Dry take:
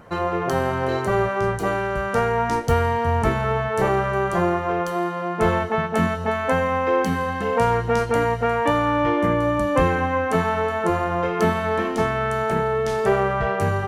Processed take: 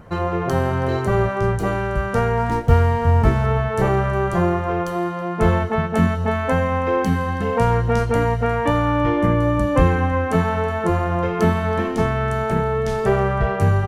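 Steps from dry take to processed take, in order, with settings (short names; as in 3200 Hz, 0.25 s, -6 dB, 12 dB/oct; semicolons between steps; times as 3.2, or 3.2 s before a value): 2.37–3.46 median filter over 9 samples; low shelf 180 Hz +11.5 dB; on a send: echo 0.324 s -20.5 dB; on the sum: gain -1 dB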